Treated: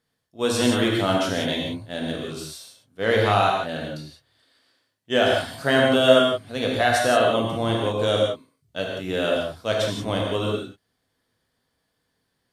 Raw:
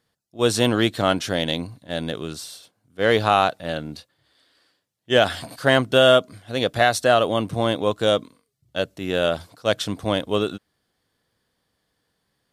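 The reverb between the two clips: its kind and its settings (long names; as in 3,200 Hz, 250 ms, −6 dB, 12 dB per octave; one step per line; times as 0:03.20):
reverb whose tail is shaped and stops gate 200 ms flat, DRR −2 dB
level −5 dB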